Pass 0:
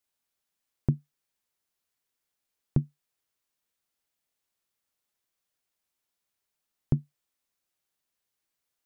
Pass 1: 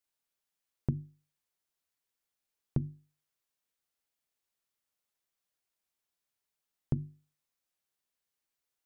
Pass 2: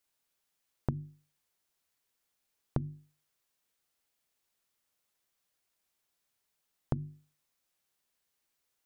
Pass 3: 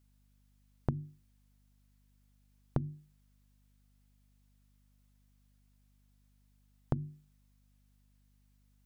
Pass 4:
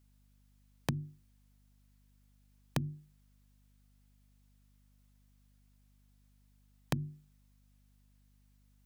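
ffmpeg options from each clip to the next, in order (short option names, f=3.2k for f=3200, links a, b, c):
-af "bandreject=f=50:t=h:w=6,bandreject=f=100:t=h:w=6,bandreject=f=150:t=h:w=6,bandreject=f=200:t=h:w=6,bandreject=f=250:t=h:w=6,bandreject=f=300:t=h:w=6,bandreject=f=350:t=h:w=6,volume=-4dB"
-af "acompressor=threshold=-34dB:ratio=6,volume=6dB"
-af "aeval=exprs='val(0)+0.000447*(sin(2*PI*50*n/s)+sin(2*PI*2*50*n/s)/2+sin(2*PI*3*50*n/s)/3+sin(2*PI*4*50*n/s)/4+sin(2*PI*5*50*n/s)/5)':c=same"
-af "aeval=exprs='(mod(10.6*val(0)+1,2)-1)/10.6':c=same,volume=1.5dB"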